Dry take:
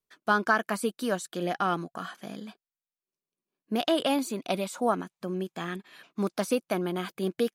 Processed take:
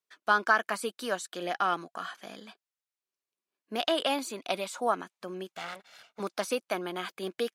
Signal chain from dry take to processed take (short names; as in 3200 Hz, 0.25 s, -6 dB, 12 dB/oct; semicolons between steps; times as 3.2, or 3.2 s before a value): 5.52–6.2 minimum comb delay 1.4 ms; weighting filter A